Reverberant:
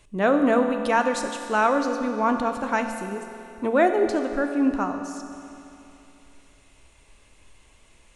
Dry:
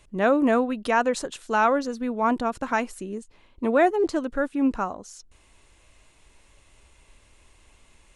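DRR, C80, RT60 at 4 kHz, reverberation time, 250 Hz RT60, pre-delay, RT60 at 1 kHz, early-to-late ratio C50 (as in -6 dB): 5.5 dB, 7.5 dB, 2.7 s, 2.9 s, 2.9 s, 3 ms, 2.9 s, 6.5 dB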